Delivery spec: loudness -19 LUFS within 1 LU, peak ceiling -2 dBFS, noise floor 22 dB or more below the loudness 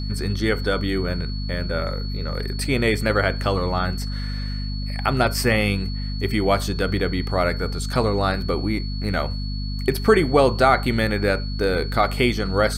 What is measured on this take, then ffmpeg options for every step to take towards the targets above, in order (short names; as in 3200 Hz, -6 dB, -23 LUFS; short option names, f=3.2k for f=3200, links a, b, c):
hum 50 Hz; harmonics up to 250 Hz; hum level -25 dBFS; steady tone 4400 Hz; tone level -36 dBFS; loudness -22.5 LUFS; peak -3.0 dBFS; loudness target -19.0 LUFS
-> -af "bandreject=f=50:t=h:w=6,bandreject=f=100:t=h:w=6,bandreject=f=150:t=h:w=6,bandreject=f=200:t=h:w=6,bandreject=f=250:t=h:w=6"
-af "bandreject=f=4.4k:w=30"
-af "volume=3.5dB,alimiter=limit=-2dB:level=0:latency=1"